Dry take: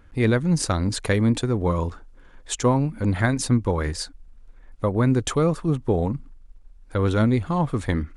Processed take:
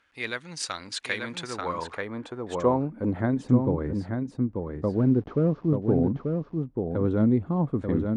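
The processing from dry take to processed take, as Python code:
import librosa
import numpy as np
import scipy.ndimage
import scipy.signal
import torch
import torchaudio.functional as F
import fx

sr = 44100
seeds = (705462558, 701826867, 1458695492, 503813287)

y = fx.delta_mod(x, sr, bps=32000, step_db=-37.5, at=(4.93, 5.75))
y = fx.wow_flutter(y, sr, seeds[0], rate_hz=2.1, depth_cents=27.0)
y = y + 10.0 ** (-5.0 / 20.0) * np.pad(y, (int(887 * sr / 1000.0), 0))[:len(y)]
y = fx.filter_sweep_bandpass(y, sr, from_hz=3100.0, to_hz=260.0, start_s=1.04, end_s=3.45, q=0.82)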